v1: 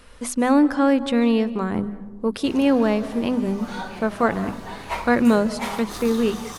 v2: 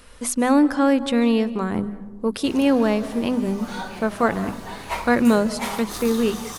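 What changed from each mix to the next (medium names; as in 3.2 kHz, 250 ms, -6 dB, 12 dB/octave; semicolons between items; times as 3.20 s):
master: add treble shelf 6.2 kHz +6.5 dB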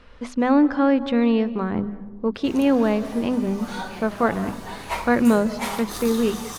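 speech: add distance through air 210 m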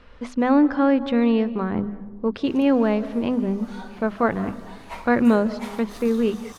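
background -8.5 dB; master: add treble shelf 6.2 kHz -6.5 dB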